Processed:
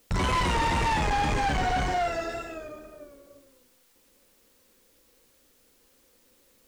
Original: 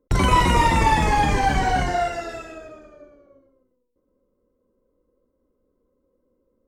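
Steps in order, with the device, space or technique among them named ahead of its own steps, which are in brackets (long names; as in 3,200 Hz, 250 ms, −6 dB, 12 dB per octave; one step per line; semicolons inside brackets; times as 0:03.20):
compact cassette (soft clipping −22.5 dBFS, distortion −7 dB; low-pass filter 9,300 Hz; tape wow and flutter; white noise bed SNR 34 dB)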